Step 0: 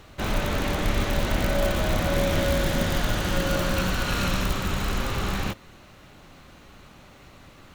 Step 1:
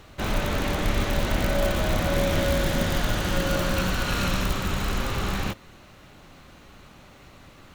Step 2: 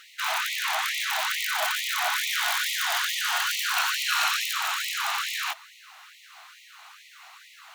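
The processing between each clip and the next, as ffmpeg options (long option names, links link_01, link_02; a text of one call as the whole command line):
ffmpeg -i in.wav -af anull out.wav
ffmpeg -i in.wav -af "afftfilt=real='re*gte(b*sr/1024,630*pow(1900/630,0.5+0.5*sin(2*PI*2.3*pts/sr)))':imag='im*gte(b*sr/1024,630*pow(1900/630,0.5+0.5*sin(2*PI*2.3*pts/sr)))':win_size=1024:overlap=0.75,volume=5.5dB" out.wav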